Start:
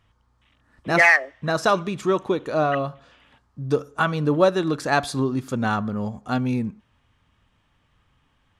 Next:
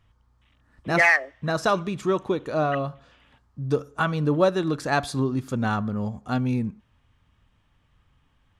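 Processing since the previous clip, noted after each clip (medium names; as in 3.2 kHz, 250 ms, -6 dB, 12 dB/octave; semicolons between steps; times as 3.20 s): bass shelf 130 Hz +7 dB; trim -3 dB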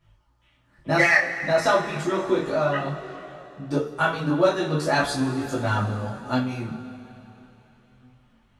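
harmonic-percussive split percussive +6 dB; two-slope reverb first 0.26 s, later 3.6 s, from -20 dB, DRR -4.5 dB; detune thickener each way 12 cents; trim -3.5 dB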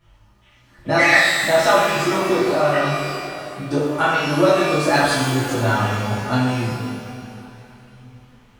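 in parallel at +1 dB: compression, threshold -31 dBFS, peak gain reduction 16.5 dB; on the sum: pitch-shifted reverb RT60 1 s, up +12 st, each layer -8 dB, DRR -1 dB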